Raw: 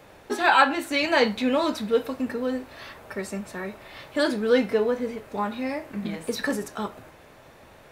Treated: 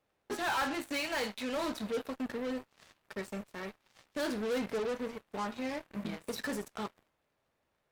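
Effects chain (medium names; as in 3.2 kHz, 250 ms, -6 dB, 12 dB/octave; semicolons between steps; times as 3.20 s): 1.00–1.56 s: bass shelf 460 Hz -8 dB; saturation -22 dBFS, distortion -8 dB; Chebyshev shaper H 3 -39 dB, 5 -42 dB, 7 -16 dB, 8 -36 dB, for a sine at -22 dBFS; trim -7 dB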